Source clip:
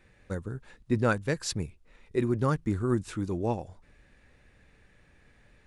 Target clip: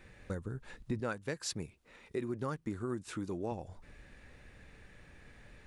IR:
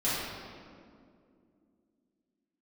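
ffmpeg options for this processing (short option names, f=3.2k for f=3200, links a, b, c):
-filter_complex "[0:a]asettb=1/sr,asplit=3[a][b][c];[a]atrim=end=1.004[d];[b]atrim=start=1:end=3.52,asetpts=PTS-STARTPTS,afade=t=in:d=0.004:c=qsin,afade=t=out:st=2.516:d=0.004:c=qsin,highpass=f=200:p=1[e];[c]atrim=start=3.516[f];[d][e]acrossfade=d=0.004:c1=hsin:c2=qsin[g];[g][f]acrossfade=d=0.004:c1=qsin:c2=hsin,acompressor=threshold=-42dB:ratio=3,volume=4dB"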